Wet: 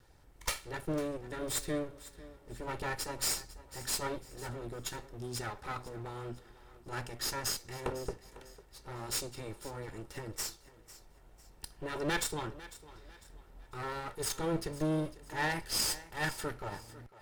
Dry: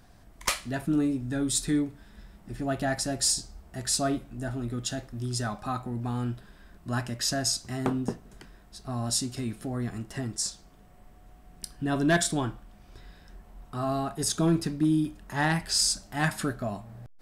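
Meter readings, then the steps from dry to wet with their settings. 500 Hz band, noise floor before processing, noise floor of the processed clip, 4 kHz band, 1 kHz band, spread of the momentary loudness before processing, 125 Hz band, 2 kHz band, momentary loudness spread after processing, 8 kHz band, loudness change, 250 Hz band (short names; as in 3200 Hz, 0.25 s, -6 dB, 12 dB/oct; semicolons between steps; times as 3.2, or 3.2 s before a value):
-5.0 dB, -54 dBFS, -59 dBFS, -7.0 dB, -6.0 dB, 11 LU, -11.0 dB, -5.5 dB, 19 LU, -8.0 dB, -8.0 dB, -12.5 dB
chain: minimum comb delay 2.2 ms; on a send: thinning echo 0.5 s, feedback 38%, high-pass 200 Hz, level -17 dB; on the sum: gain -5.5 dB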